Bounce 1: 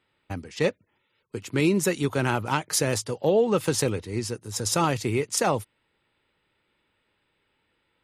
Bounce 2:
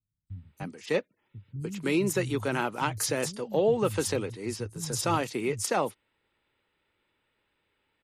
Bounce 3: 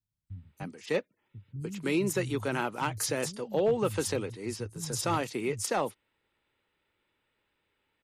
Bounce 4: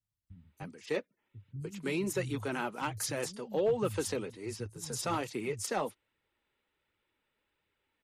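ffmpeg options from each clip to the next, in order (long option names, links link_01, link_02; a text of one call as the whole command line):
ffmpeg -i in.wav -filter_complex "[0:a]acrossover=split=160|5900[link_01][link_02][link_03];[link_03]adelay=270[link_04];[link_02]adelay=300[link_05];[link_01][link_05][link_04]amix=inputs=3:normalize=0,volume=-3dB" out.wav
ffmpeg -i in.wav -af "asoftclip=type=hard:threshold=-17dB,volume=-2dB" out.wav
ffmpeg -i in.wav -af "flanger=delay=0.4:depth=5:regen=-37:speed=1.3:shape=triangular" out.wav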